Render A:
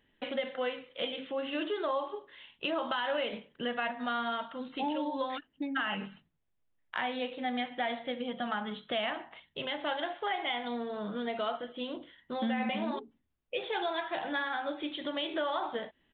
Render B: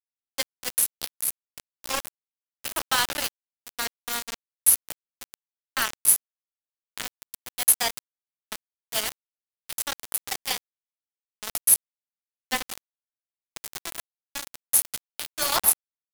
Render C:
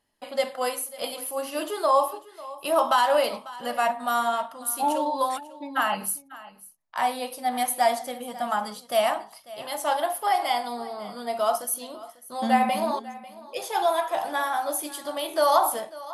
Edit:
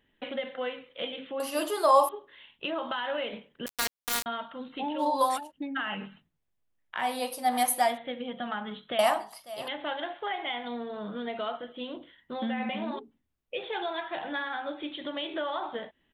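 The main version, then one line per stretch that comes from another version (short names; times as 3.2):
A
1.4–2.09 from C
3.66–4.26 from B
5.01–5.49 from C, crossfade 0.06 s
7.09–7.86 from C, crossfade 0.24 s
8.99–9.68 from C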